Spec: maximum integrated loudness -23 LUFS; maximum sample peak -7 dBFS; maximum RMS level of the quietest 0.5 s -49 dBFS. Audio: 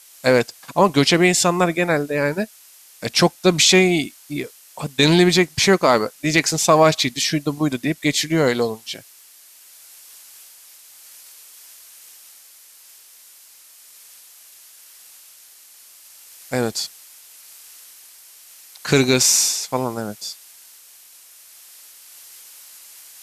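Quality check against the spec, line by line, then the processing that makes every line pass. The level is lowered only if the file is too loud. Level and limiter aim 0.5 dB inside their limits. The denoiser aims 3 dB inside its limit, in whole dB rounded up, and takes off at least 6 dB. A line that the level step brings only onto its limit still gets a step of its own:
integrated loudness -18.0 LUFS: fail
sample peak -3.5 dBFS: fail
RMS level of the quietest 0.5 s -48 dBFS: fail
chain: trim -5.5 dB

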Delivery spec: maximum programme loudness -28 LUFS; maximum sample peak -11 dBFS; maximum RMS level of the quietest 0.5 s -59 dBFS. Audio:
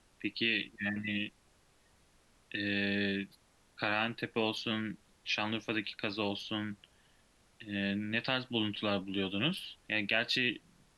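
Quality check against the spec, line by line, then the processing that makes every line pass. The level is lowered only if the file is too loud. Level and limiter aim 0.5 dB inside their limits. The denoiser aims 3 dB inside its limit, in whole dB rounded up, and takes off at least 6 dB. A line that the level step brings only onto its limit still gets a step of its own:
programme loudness -34.0 LUFS: pass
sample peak -14.5 dBFS: pass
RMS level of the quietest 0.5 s -67 dBFS: pass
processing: none needed

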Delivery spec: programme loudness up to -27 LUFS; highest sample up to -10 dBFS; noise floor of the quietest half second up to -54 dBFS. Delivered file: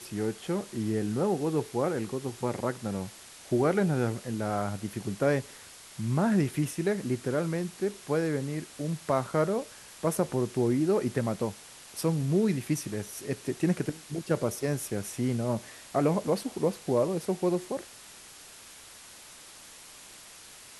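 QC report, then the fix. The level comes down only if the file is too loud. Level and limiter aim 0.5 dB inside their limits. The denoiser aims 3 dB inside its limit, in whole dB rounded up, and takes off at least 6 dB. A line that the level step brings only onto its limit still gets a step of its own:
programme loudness -30.0 LUFS: pass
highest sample -13.0 dBFS: pass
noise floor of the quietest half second -50 dBFS: fail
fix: noise reduction 7 dB, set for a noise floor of -50 dBFS

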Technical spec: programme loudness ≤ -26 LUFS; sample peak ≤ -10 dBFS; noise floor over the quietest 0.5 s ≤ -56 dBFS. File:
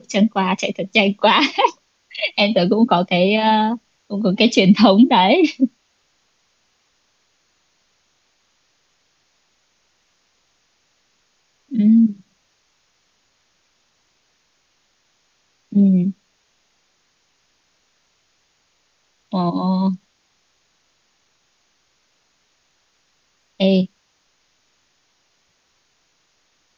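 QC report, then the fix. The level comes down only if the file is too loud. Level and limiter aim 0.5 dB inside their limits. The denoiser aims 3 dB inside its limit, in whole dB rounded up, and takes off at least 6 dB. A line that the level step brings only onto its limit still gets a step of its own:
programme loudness -16.5 LUFS: fail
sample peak -2.0 dBFS: fail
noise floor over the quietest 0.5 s -64 dBFS: pass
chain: trim -10 dB

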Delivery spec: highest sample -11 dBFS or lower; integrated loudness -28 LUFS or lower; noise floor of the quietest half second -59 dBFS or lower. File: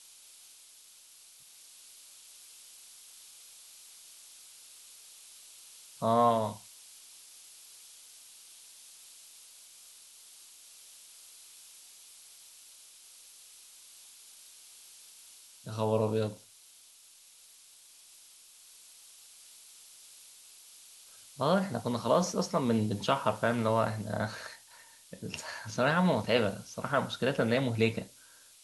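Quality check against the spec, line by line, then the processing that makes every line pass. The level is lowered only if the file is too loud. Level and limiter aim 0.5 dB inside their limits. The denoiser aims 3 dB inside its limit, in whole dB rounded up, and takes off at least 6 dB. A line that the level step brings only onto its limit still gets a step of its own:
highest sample -12.5 dBFS: pass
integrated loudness -30.5 LUFS: pass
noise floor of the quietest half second -57 dBFS: fail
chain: noise reduction 6 dB, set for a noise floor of -57 dBFS

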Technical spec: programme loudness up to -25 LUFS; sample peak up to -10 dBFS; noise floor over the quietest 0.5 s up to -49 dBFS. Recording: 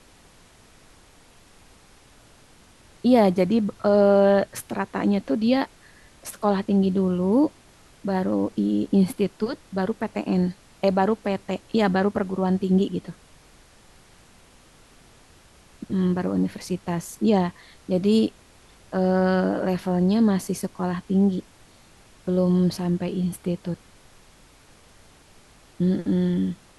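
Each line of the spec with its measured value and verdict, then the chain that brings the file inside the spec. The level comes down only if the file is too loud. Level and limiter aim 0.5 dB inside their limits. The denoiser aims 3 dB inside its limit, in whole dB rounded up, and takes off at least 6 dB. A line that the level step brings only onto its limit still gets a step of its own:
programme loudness -23.5 LUFS: fail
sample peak -6.5 dBFS: fail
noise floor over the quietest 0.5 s -53 dBFS: pass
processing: trim -2 dB; peak limiter -10.5 dBFS

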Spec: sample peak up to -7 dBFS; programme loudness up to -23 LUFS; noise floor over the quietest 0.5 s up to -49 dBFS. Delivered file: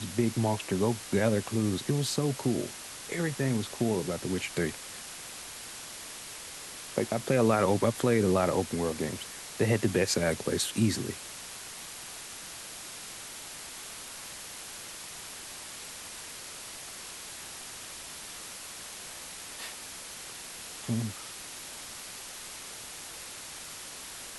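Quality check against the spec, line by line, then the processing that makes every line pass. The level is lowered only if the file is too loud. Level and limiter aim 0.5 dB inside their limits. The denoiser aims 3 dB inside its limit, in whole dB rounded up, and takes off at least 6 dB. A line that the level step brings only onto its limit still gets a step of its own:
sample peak -12.0 dBFS: pass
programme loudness -32.5 LUFS: pass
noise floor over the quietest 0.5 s -43 dBFS: fail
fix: noise reduction 9 dB, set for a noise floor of -43 dBFS

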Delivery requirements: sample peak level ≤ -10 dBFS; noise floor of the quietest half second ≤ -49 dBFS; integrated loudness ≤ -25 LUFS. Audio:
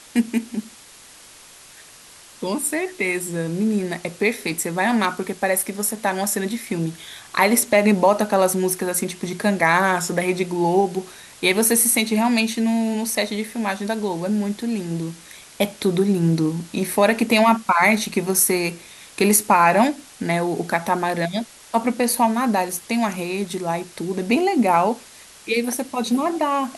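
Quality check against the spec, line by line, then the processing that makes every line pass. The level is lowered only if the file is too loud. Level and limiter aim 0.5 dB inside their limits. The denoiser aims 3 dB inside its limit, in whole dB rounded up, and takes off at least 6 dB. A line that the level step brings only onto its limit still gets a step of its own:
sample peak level -3.0 dBFS: fail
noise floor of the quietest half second -46 dBFS: fail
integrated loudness -20.5 LUFS: fail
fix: trim -5 dB; peak limiter -10.5 dBFS

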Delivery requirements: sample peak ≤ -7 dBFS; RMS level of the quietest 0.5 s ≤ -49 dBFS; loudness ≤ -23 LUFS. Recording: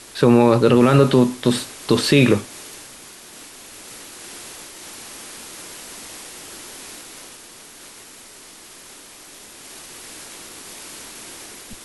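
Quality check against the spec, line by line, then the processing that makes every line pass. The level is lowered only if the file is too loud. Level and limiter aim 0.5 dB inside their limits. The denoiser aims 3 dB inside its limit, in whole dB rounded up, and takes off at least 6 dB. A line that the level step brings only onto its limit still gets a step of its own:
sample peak -3.5 dBFS: fail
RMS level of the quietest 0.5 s -43 dBFS: fail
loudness -16.0 LUFS: fail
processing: trim -7.5 dB

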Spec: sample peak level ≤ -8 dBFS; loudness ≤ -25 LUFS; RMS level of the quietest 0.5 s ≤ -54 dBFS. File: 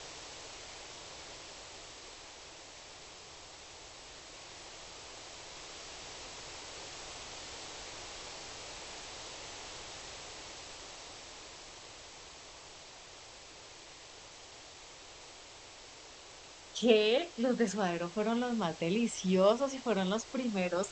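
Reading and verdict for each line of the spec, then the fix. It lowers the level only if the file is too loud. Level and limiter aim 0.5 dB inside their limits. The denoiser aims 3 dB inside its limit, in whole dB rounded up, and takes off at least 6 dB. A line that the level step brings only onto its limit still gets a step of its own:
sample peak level -12.5 dBFS: pass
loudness -36.0 LUFS: pass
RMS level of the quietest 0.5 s -53 dBFS: fail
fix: noise reduction 6 dB, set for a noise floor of -53 dBFS

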